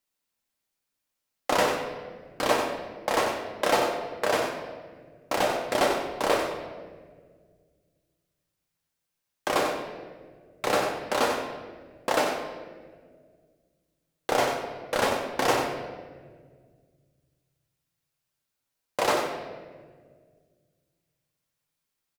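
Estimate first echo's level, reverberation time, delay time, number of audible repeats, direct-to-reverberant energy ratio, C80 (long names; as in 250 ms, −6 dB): −8.0 dB, 1.7 s, 93 ms, 1, 0.5 dB, 4.5 dB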